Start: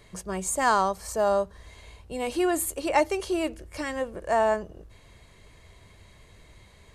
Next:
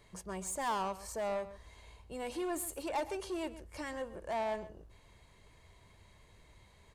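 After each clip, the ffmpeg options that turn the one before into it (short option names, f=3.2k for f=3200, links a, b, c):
-filter_complex "[0:a]asoftclip=type=tanh:threshold=-24dB,equalizer=f=910:t=o:w=0.35:g=5,asplit=2[a][b];[b]adelay=128.3,volume=-15dB,highshelf=f=4k:g=-2.89[c];[a][c]amix=inputs=2:normalize=0,volume=-8.5dB"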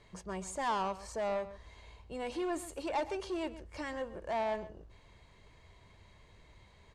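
-af "lowpass=6.1k,volume=1.5dB"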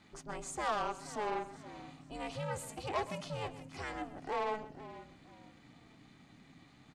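-filter_complex "[0:a]equalizer=f=290:w=0.67:g=-5,aeval=exprs='val(0)*sin(2*PI*210*n/s)':c=same,asplit=4[a][b][c][d];[b]adelay=476,afreqshift=-64,volume=-15dB[e];[c]adelay=952,afreqshift=-128,volume=-24.9dB[f];[d]adelay=1428,afreqshift=-192,volume=-34.8dB[g];[a][e][f][g]amix=inputs=4:normalize=0,volume=3dB"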